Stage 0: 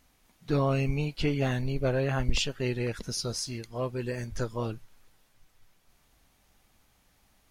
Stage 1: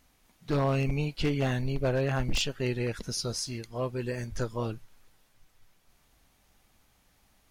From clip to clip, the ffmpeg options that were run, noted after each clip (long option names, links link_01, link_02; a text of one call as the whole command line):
ffmpeg -i in.wav -af "aeval=exprs='0.106*(abs(mod(val(0)/0.106+3,4)-2)-1)':channel_layout=same" out.wav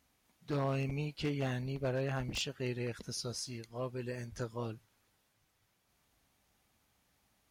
ffmpeg -i in.wav -af "highpass=60,volume=-7dB" out.wav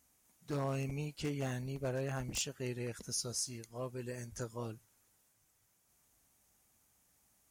ffmpeg -i in.wav -af "highshelf=frequency=5400:width_type=q:width=1.5:gain=8.5,volume=-2.5dB" out.wav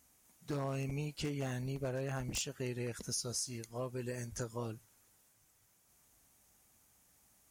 ffmpeg -i in.wav -af "acompressor=threshold=-39dB:ratio=3,volume=3.5dB" out.wav